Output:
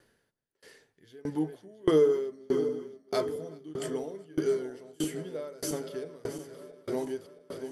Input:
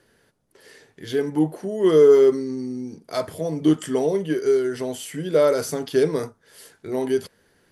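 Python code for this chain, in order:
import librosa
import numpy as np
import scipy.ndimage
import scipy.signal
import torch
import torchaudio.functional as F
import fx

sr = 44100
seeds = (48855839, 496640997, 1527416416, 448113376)

y = fx.reverse_delay_fb(x, sr, ms=336, feedback_pct=81, wet_db=-10.5)
y = y + 10.0 ** (-23.0 / 20.0) * np.pad(y, (int(256 * sr / 1000.0), 0))[:len(y)]
y = fx.tremolo_decay(y, sr, direction='decaying', hz=1.6, depth_db=28)
y = F.gain(torch.from_numpy(y), -3.0).numpy()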